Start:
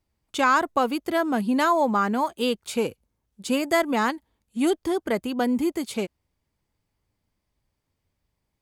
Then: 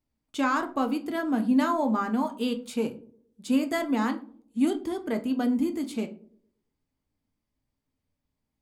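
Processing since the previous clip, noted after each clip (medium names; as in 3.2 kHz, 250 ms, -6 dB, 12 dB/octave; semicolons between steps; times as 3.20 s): peaking EQ 250 Hz +12 dB 0.38 oct; band-passed feedback delay 114 ms, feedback 44%, band-pass 350 Hz, level -19 dB; on a send at -6 dB: reverberation RT60 0.35 s, pre-delay 7 ms; on the sum: trim -8 dB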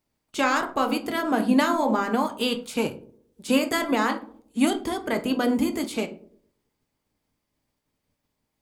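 spectral peaks clipped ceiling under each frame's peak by 13 dB; trim +3 dB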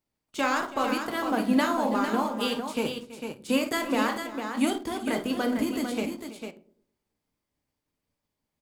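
in parallel at -8.5 dB: small samples zeroed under -28 dBFS; on the sum: multi-tap echo 51/329/451 ms -12/-16.5/-7 dB; trim -6.5 dB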